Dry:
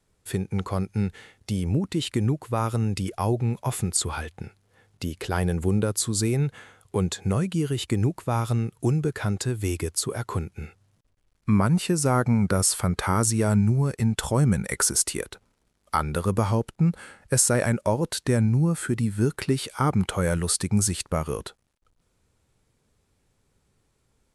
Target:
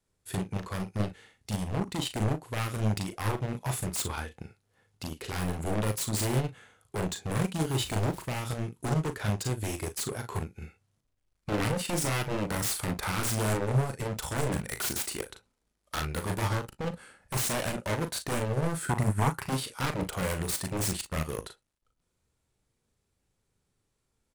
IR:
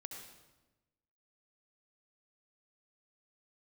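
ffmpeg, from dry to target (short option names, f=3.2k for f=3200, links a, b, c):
-filter_complex "[0:a]asettb=1/sr,asplit=3[a][b][c];[a]atrim=end=7.694[d];[b]atrim=start=7.69:end=8.22,asetpts=PTS-STARTPTS,afade=t=in:d=0.004:c=qsin,afade=t=out:st=0.526:d=0.004:c=qsin,aeval=exprs='val(0)+0.5*0.0211*sgn(val(0))':c=same[e];[c]atrim=start=8.216[f];[d][e]acrossfade=d=0.004:c1=hsin:c2=qsin[g];[g][f]acrossfade=d=0.004:c1=qsin:c2=hsin,highshelf=f=3.9k:g=3.5,aeval=exprs='0.0891*(abs(mod(val(0)/0.0891+3,4)-2)-1)':c=same,asettb=1/sr,asplit=3[h][i][j];[h]atrim=end=18.874[k];[i]atrim=start=18.87:end=19.48,asetpts=PTS-STARTPTS,afade=t=in:d=0.004:c=qsin,afade=t=out:st=0.606:d=0.004:c=qsin,equalizer=f=125:t=o:w=1:g=7,equalizer=f=250:t=o:w=1:g=-3,equalizer=f=500:t=o:w=1:g=-7,equalizer=f=1k:t=o:w=1:g=10,equalizer=f=4k:t=o:w=1:g=-9[l];[j]atrim=start=19.476[m];[k][l]acrossfade=d=0.004:c1=hsin:c2=qsin[n];[n][m]acrossfade=d=0.004:c1=qsin:c2=hsin,aecho=1:1:38|55:0.531|0.168,asplit=2[o][p];[1:a]atrim=start_sample=2205,atrim=end_sample=3528,highshelf=f=9k:g=-11[q];[p][q]afir=irnorm=-1:irlink=0,volume=-9.5dB[r];[o][r]amix=inputs=2:normalize=0,aeval=exprs='0.398*(cos(1*acos(clip(val(0)/0.398,-1,1)))-cos(1*PI/2))+0.0398*(cos(7*acos(clip(val(0)/0.398,-1,1)))-cos(7*PI/2))':c=same,volume=-1dB"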